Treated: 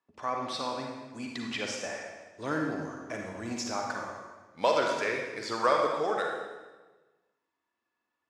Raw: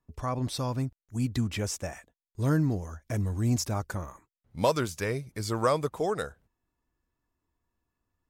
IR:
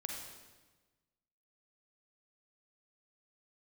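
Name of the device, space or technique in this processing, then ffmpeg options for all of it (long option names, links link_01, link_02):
supermarket ceiling speaker: -filter_complex "[0:a]highpass=340,lowpass=5500,equalizer=frequency=2000:width_type=o:width=2.9:gain=5.5[link_01];[1:a]atrim=start_sample=2205[link_02];[link_01][link_02]afir=irnorm=-1:irlink=0"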